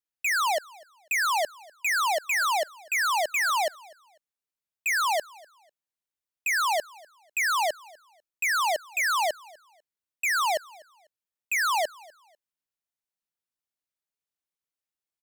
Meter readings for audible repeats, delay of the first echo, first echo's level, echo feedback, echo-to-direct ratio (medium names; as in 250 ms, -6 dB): 1, 248 ms, -23.5 dB, no regular repeats, -23.0 dB